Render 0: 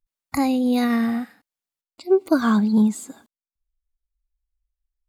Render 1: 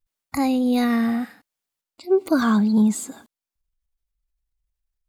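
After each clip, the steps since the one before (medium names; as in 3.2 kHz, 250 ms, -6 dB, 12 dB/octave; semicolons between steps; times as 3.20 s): transient shaper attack -2 dB, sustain +5 dB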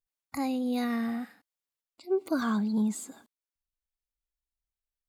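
bass shelf 84 Hz -8 dB; trim -9 dB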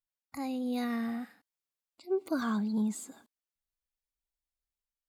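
level rider gain up to 5 dB; trim -8 dB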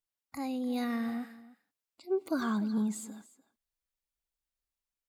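delay 297 ms -18 dB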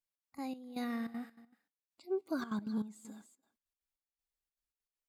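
trance gate "xx.x.xx...xxxx." 197 bpm -12 dB; trim -4.5 dB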